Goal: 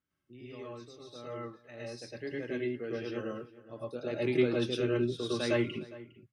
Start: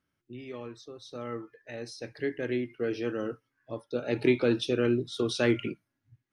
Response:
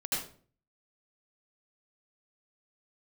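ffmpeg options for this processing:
-filter_complex "[0:a]asplit=2[link_01][link_02];[link_02]adelay=408.2,volume=-18dB,highshelf=frequency=4000:gain=-9.18[link_03];[link_01][link_03]amix=inputs=2:normalize=0[link_04];[1:a]atrim=start_sample=2205,atrim=end_sample=3528,asetrate=30429,aresample=44100[link_05];[link_04][link_05]afir=irnorm=-1:irlink=0,volume=-7dB"

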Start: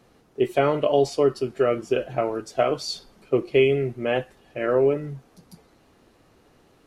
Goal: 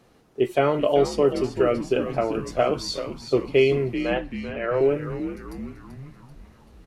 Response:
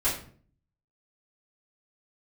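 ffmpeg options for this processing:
-filter_complex "[0:a]asettb=1/sr,asplit=3[link_01][link_02][link_03];[link_01]atrim=end=3.944[link_04];[link_02]atrim=start=3.94:end=4.81,asetpts=PTS-STARTPTS,afade=type=in:duration=0.004:curve=qsin,afade=type=out:start_time=0.866:duration=0.004:curve=qsin,highpass=490,lowpass=3800[link_05];[link_03]atrim=start=4.806[link_06];[link_04][link_05]acrossfade=duration=0.004:curve1=hsin:curve2=qsin[link_07];[link_07][link_06]acrossfade=duration=0.004:curve1=qsin:curve2=hsin,asplit=2[link_08][link_09];[link_09]asplit=6[link_10][link_11][link_12][link_13][link_14][link_15];[link_10]adelay=386,afreqshift=-92,volume=-10dB[link_16];[link_11]adelay=772,afreqshift=-184,volume=-15dB[link_17];[link_12]adelay=1158,afreqshift=-276,volume=-20.1dB[link_18];[link_13]adelay=1544,afreqshift=-368,volume=-25.1dB[link_19];[link_14]adelay=1930,afreqshift=-460,volume=-30.1dB[link_20];[link_15]adelay=2316,afreqshift=-552,volume=-35.2dB[link_21];[link_16][link_17][link_18][link_19][link_20][link_21]amix=inputs=6:normalize=0[link_22];[link_08][link_22]amix=inputs=2:normalize=0"

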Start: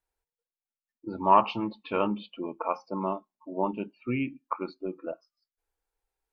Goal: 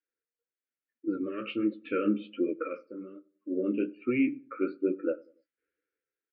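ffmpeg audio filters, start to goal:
ffmpeg -i in.wav -filter_complex "[0:a]dynaudnorm=framelen=130:gausssize=9:maxgain=11dB,alimiter=limit=-13dB:level=0:latency=1:release=46,aemphasis=mode=production:type=bsi,asplit=3[link_01][link_02][link_03];[link_01]afade=type=out:start_time=2.8:duration=0.02[link_04];[link_02]acompressor=threshold=-40dB:ratio=3,afade=type=in:start_time=2.8:duration=0.02,afade=type=out:start_time=3.49:duration=0.02[link_05];[link_03]afade=type=in:start_time=3.49:duration=0.02[link_06];[link_04][link_05][link_06]amix=inputs=3:normalize=0,flanger=delay=9.6:depth=9.9:regen=-26:speed=1.2:shape=triangular,asuperstop=centerf=840:order=12:qfactor=1.1,highpass=110,equalizer=frequency=170:width_type=q:width=4:gain=-4,equalizer=frequency=300:width_type=q:width=4:gain=8,equalizer=frequency=590:width_type=q:width=4:gain=4,lowpass=frequency=2200:width=0.5412,lowpass=frequency=2200:width=1.3066,asplit=2[link_07][link_08];[link_08]adelay=96,lowpass=frequency=910:poles=1,volume=-21.5dB,asplit=2[link_09][link_10];[link_10]adelay=96,lowpass=frequency=910:poles=1,volume=0.42,asplit=2[link_11][link_12];[link_12]adelay=96,lowpass=frequency=910:poles=1,volume=0.42[link_13];[link_09][link_11][link_13]amix=inputs=3:normalize=0[link_14];[link_07][link_14]amix=inputs=2:normalize=0" out.wav

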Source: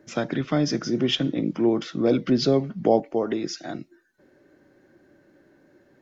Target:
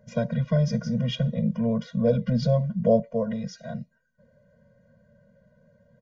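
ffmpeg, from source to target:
ffmpeg -i in.wav -af "tiltshelf=frequency=720:gain=7,aresample=16000,aresample=44100,afftfilt=real='re*eq(mod(floor(b*sr/1024/230),2),0)':imag='im*eq(mod(floor(b*sr/1024/230),2),0)':win_size=1024:overlap=0.75" out.wav

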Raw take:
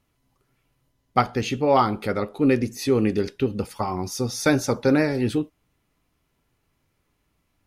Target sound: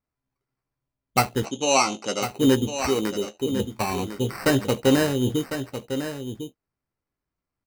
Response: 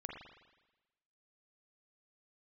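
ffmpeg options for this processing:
-filter_complex "[0:a]asettb=1/sr,asplit=3[link_01][link_02][link_03];[link_01]atrim=end=2.844[link_04];[link_02]atrim=start=2.84:end=3.52,asetpts=PTS-STARTPTS,afade=type=in:duration=0.004:curve=qsin,afade=type=out:start_time=0.676:duration=0.004:curve=qsin,aemphasis=mode=production:type=riaa[link_05];[link_03]atrim=start=3.516[link_06];[link_04][link_05]acrossfade=duration=0.004:curve1=hsin:curve2=qsin[link_07];[link_07][link_06]acrossfade=duration=0.004:curve1=qsin:curve2=hsin,afwtdn=0.02,acrusher=samples=13:mix=1:aa=0.000001,asoftclip=type=tanh:threshold=-7dB,asettb=1/sr,asplit=3[link_08][link_09][link_10];[link_08]atrim=end=1.454[link_11];[link_09]atrim=start=1.45:end=2.34,asetpts=PTS-STARTPTS,afade=type=in:duration=0.004:curve=qsin,afade=type=out:start_time=0.886:duration=0.004:curve=qsin,highpass=280,equalizer=frequency=420:width_type=q:width=4:gain=-5,equalizer=frequency=1800:width_type=q:width=4:gain=-9,equalizer=frequency=2800:width_type=q:width=4:gain=4,equalizer=frequency=6200:width_type=q:width=4:gain=10,lowpass=frequency=8200:width=0.5412,lowpass=frequency=8200:width=1.3066[link_12];[link_10]atrim=start=2.336[link_13];[link_11][link_12]acrossfade=duration=0.004:curve1=hsin:curve2=qsin[link_14];[link_14][link_13]acrossfade=duration=0.004:curve1=qsin:curve2=hsin,asplit=2[link_15][link_16];[link_16]adelay=15,volume=-11.5dB[link_17];[link_15][link_17]amix=inputs=2:normalize=0,aecho=1:1:1052:0.335"

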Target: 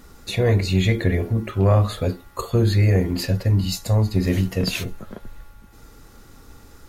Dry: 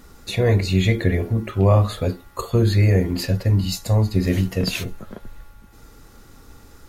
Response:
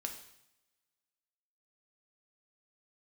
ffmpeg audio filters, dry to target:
-af "asoftclip=type=tanh:threshold=-6.5dB"

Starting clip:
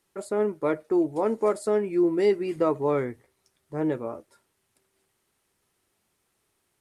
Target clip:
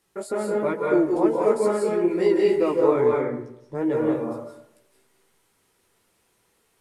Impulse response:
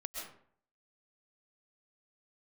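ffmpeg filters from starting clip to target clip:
-filter_complex "[0:a]asettb=1/sr,asplit=3[link_01][link_02][link_03];[link_01]atrim=end=3.004[link_04];[link_02]atrim=start=3:end=3.75,asetpts=PTS-STARTPTS,afade=type=in:duration=0.004:curve=qsin,afade=type=out:start_time=0.746:duration=0.004:curve=qsin,lowpass=frequency=3300:poles=1[link_05];[link_03]atrim=start=3.746[link_06];[link_04][link_05]acrossfade=duration=0.004:curve1=hsin:curve2=qsin[link_07];[link_07][link_06]acrossfade=duration=0.004:curve1=qsin:curve2=hsin,asplit=2[link_08][link_09];[link_09]acompressor=threshold=-31dB:ratio=6,volume=0dB[link_10];[link_08][link_10]amix=inputs=2:normalize=0,flanger=delay=15.5:depth=3.4:speed=2.3[link_11];[1:a]atrim=start_sample=2205,asetrate=33075,aresample=44100[link_12];[link_11][link_12]afir=irnorm=-1:irlink=0,volume=3dB"

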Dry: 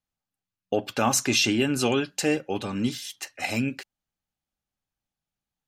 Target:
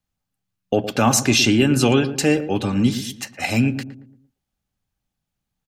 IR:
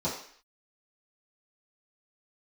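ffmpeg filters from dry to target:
-filter_complex "[0:a]acrossover=split=220[link_01][link_02];[link_01]acontrast=69[link_03];[link_03][link_02]amix=inputs=2:normalize=0,asplit=2[link_04][link_05];[link_05]adelay=114,lowpass=frequency=870:poles=1,volume=-10dB,asplit=2[link_06][link_07];[link_07]adelay=114,lowpass=frequency=870:poles=1,volume=0.44,asplit=2[link_08][link_09];[link_09]adelay=114,lowpass=frequency=870:poles=1,volume=0.44,asplit=2[link_10][link_11];[link_11]adelay=114,lowpass=frequency=870:poles=1,volume=0.44,asplit=2[link_12][link_13];[link_13]adelay=114,lowpass=frequency=870:poles=1,volume=0.44[link_14];[link_04][link_06][link_08][link_10][link_12][link_14]amix=inputs=6:normalize=0,volume=5dB"

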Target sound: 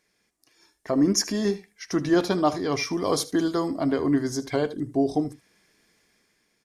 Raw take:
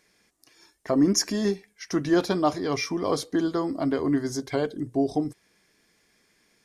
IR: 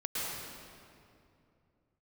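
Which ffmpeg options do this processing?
-filter_complex "[0:a]asettb=1/sr,asplit=3[link_01][link_02][link_03];[link_01]atrim=end=2.934[link_04];[link_02]atrim=start=2.93:end=3.68,asetpts=PTS-STARTPTS,afade=type=in:duration=0.004:curve=qsin,afade=type=out:start_time=0.746:duration=0.004:curve=qsin,highshelf=frequency=5600:gain=9.5[link_05];[link_03]atrim=start=3.676[link_06];[link_04][link_05]acrossfade=duration=0.004:curve1=hsin:curve2=qsin[link_07];[link_07][link_06]acrossfade=duration=0.004:curve1=qsin:curve2=hsin,asplit=2[link_08][link_09];[link_09]aecho=0:1:77:0.141[link_10];[link_08][link_10]amix=inputs=2:normalize=0,dynaudnorm=framelen=170:gausssize=9:maxgain=7.5dB,volume=-6dB"

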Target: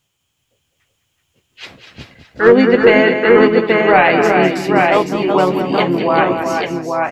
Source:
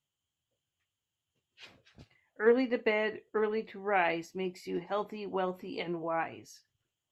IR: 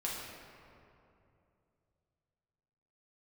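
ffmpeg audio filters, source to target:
-filter_complex "[0:a]aecho=1:1:203|364|379|583|829:0.335|0.237|0.422|0.106|0.596,asplit=2[link_01][link_02];[link_02]asetrate=35002,aresample=44100,atempo=1.25992,volume=-7dB[link_03];[link_01][link_03]amix=inputs=2:normalize=0,apsyclip=19.5dB,volume=-1.5dB"

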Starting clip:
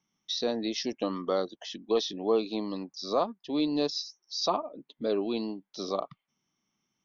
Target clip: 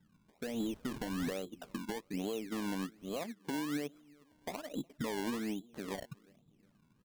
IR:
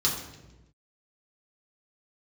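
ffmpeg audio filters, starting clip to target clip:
-filter_complex "[0:a]asettb=1/sr,asplit=3[link_01][link_02][link_03];[link_01]atrim=end=0.604[link_04];[link_02]atrim=start=0.6:end=1.33,asetpts=PTS-STARTPTS,afade=type=in:duration=0.004:curve=qsin,afade=type=out:start_time=0.726:duration=0.004:curve=qsin,aeval=exprs='val(0)+0.5*0.0224*sgn(val(0))':channel_layout=same[link_05];[link_03]atrim=start=1.326[link_06];[link_04][link_05]acrossfade=duration=0.004:curve1=hsin:curve2=qsin[link_07];[link_07][link_06]acrossfade=duration=0.004:curve1=qsin:curve2=hsin,lowshelf=frequency=180:gain=11,bandreject=frequency=360:width=12,acompressor=threshold=-39dB:ratio=10,alimiter=level_in=14.5dB:limit=-24dB:level=0:latency=1:release=325,volume=-14.5dB,asettb=1/sr,asplit=3[link_08][link_09][link_10];[link_08]atrim=end=5.304[link_11];[link_09]atrim=start=5.3:end=5.91,asetpts=PTS-STARTPTS,afade=type=in:duration=0.004:curve=qsin,afade=type=out:start_time=0.606:duration=0.004:curve=qsin,bass=frequency=250:gain=-3,treble=frequency=4000:gain=15[link_12];[link_10]atrim=start=5.906[link_13];[link_11][link_12]acrossfade=duration=0.004:curve1=hsin:curve2=qsin[link_14];[link_14][link_13]acrossfade=duration=0.004:curve1=qsin:curve2=hsin,asplit=2[link_15][link_16];[link_16]adelay=362,lowpass=frequency=1200:poles=1,volume=-23.5dB,asplit=2[link_17][link_18];[link_18]adelay=362,lowpass=frequency=1200:poles=1,volume=0.45,asplit=2[link_19][link_20];[link_20]adelay=362,lowpass=frequency=1200:poles=1,volume=0.45[link_21];[link_15][link_17][link_19][link_21]amix=inputs=4:normalize=0,adynamicsmooth=sensitivity=4.5:basefreq=600,acrusher=samples=24:mix=1:aa=0.000001:lfo=1:lforange=24:lforate=1.2,asettb=1/sr,asplit=3[link_22][link_23][link_24];[link_22]atrim=end=3.174[link_25];[link_23]atrim=start=3.17:end=3.95,asetpts=PTS-STARTPTS,afade=type=in:duration=0.004:curve=qsin,afade=type=out:start_time=0.776:duration=0.004:curve=qsin,highpass=100[link_26];[link_24]atrim=start=3.946[link_27];[link_25][link_26]acrossfade=duration=0.004:curve1=hsin:curve2=qsin[link_28];[link_28][link_27]acrossfade=duration=0.004:curve1=qsin:curve2=hsin,volume=11dB"

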